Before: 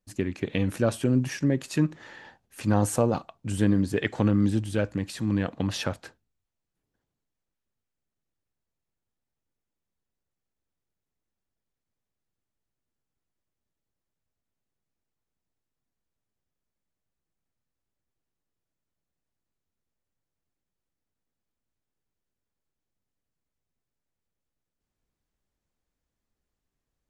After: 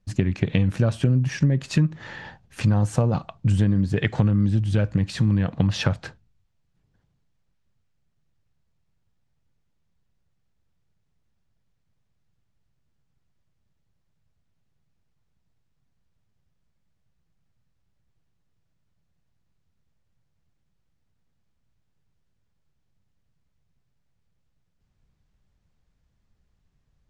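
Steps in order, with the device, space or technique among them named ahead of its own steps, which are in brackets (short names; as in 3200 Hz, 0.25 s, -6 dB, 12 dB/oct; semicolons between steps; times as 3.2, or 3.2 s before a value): jukebox (LPF 5900 Hz 12 dB/oct; resonant low shelf 210 Hz +8 dB, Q 1.5; compressor, threshold -25 dBFS, peak gain reduction 12.5 dB); gain +8 dB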